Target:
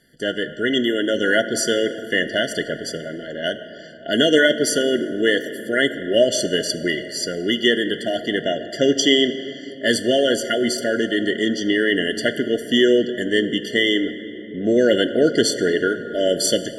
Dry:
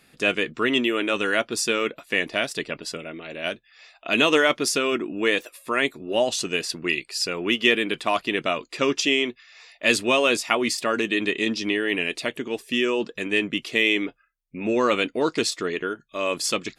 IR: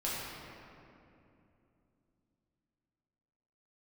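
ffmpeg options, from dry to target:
-filter_complex "[0:a]dynaudnorm=f=610:g=3:m=11.5dB,asplit=2[a][b];[1:a]atrim=start_sample=2205,asetrate=31311,aresample=44100[c];[b][c]afir=irnorm=-1:irlink=0,volume=-17dB[d];[a][d]amix=inputs=2:normalize=0,afftfilt=real='re*eq(mod(floor(b*sr/1024/700),2),0)':imag='im*eq(mod(floor(b*sr/1024/700),2),0)':win_size=1024:overlap=0.75"

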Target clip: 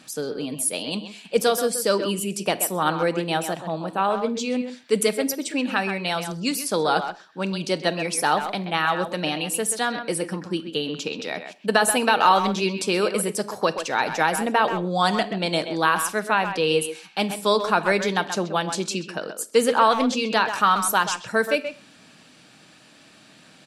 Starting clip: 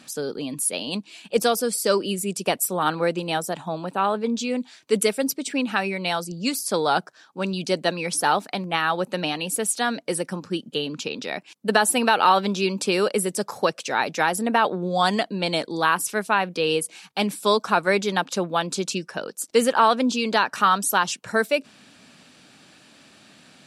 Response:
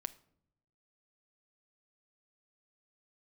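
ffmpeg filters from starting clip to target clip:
-filter_complex "[0:a]asplit=2[a][b];[b]adelay=130,highpass=300,lowpass=3.4k,asoftclip=type=hard:threshold=-12dB,volume=-8dB[c];[a][c]amix=inputs=2:normalize=0[d];[1:a]atrim=start_sample=2205,atrim=end_sample=6615[e];[d][e]afir=irnorm=-1:irlink=0,volume=2dB"

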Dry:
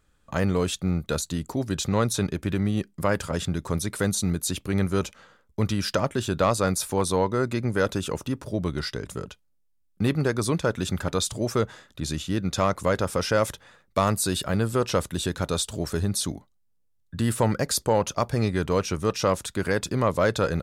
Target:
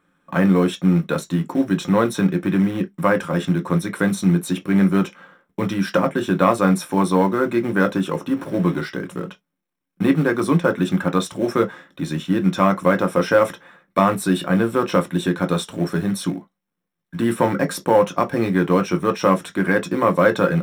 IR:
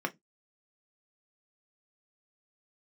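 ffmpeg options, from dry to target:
-filter_complex "[0:a]asettb=1/sr,asplit=3[a][b][c];[a]atrim=end=8.364[d];[b]atrim=start=8.36:end=8.81,asetpts=PTS-STARTPTS,afade=t=in:d=0.004:c=qsin,afade=t=out:st=0.446:d=0.004:c=qsin,aeval=exprs='val(0)+0.5*0.0126*sgn(val(0))':c=same[e];[c]atrim=start=8.806[f];[d][e]acrossfade=d=0.004:c1=hsin:c2=qsin[g];[g][f]acrossfade=d=0.004:c1=qsin:c2=hsin,acrusher=bits=5:mode=log:mix=0:aa=0.000001[h];[1:a]atrim=start_sample=2205,atrim=end_sample=3528[i];[h][i]afir=irnorm=-1:irlink=0"

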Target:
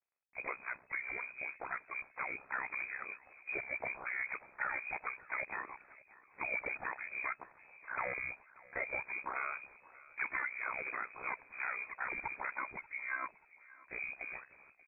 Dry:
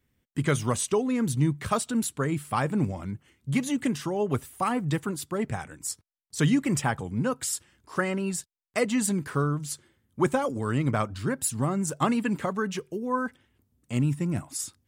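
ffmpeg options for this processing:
-filter_complex "[0:a]highpass=f=1k:p=1,dynaudnorm=f=300:g=17:m=8.5dB,alimiter=limit=-16dB:level=0:latency=1:release=24,acompressor=threshold=-33dB:ratio=2.5,asplit=3[a][b][c];[b]asetrate=58866,aresample=44100,atempo=0.749154,volume=-17dB[d];[c]asetrate=66075,aresample=44100,atempo=0.66742,volume=-11dB[e];[a][d][e]amix=inputs=3:normalize=0,aeval=exprs='0.158*(cos(1*acos(clip(val(0)/0.158,-1,1)))-cos(1*PI/2))+0.0355*(cos(5*acos(clip(val(0)/0.158,-1,1)))-cos(5*PI/2))':c=same,acrusher=bits=8:dc=4:mix=0:aa=0.000001,aeval=exprs='val(0)*sin(2*PI*32*n/s)':c=same,aecho=1:1:584|1168|1752:0.0794|0.0334|0.014,lowpass=f=2.2k:t=q:w=0.5098,lowpass=f=2.2k:t=q:w=0.6013,lowpass=f=2.2k:t=q:w=0.9,lowpass=f=2.2k:t=q:w=2.563,afreqshift=-2600,adynamicequalizer=threshold=0.00794:dfrequency=1500:dqfactor=0.7:tfrequency=1500:tqfactor=0.7:attack=5:release=100:ratio=0.375:range=2:mode=cutabove:tftype=highshelf,volume=-6dB"

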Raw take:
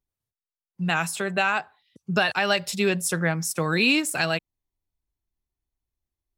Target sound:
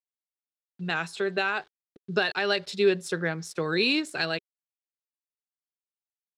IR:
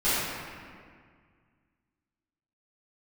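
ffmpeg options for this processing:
-af "aeval=exprs='val(0)*gte(abs(val(0)),0.00447)':c=same,adynamicsmooth=sensitivity=1:basefreq=6.6k,equalizer=f=400:t=o:w=0.67:g=12,equalizer=f=1.6k:t=o:w=0.67:g=5,equalizer=f=4k:t=o:w=0.67:g=10,volume=-8.5dB"

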